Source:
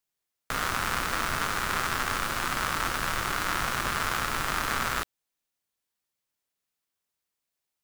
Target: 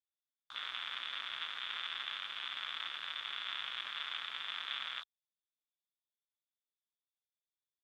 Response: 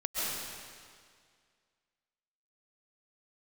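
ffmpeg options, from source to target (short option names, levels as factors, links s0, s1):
-af "afwtdn=0.0224,bandpass=f=3500:t=q:w=15:csg=0,volume=4.73"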